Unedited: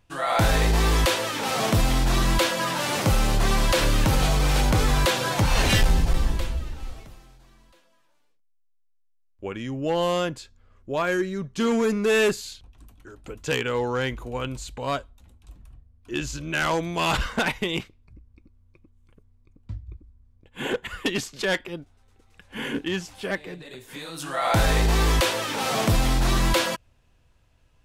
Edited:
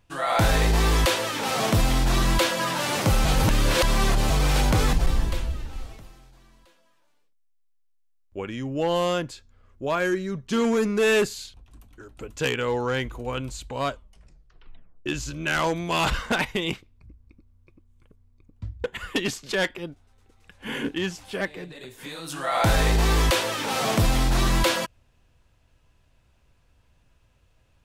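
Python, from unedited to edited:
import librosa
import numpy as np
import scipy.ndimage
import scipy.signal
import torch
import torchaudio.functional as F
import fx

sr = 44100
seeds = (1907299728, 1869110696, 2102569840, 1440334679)

y = fx.edit(x, sr, fx.reverse_span(start_s=3.25, length_s=1.05),
    fx.cut(start_s=4.93, length_s=1.07),
    fx.tape_stop(start_s=14.98, length_s=1.15),
    fx.cut(start_s=19.91, length_s=0.83), tone=tone)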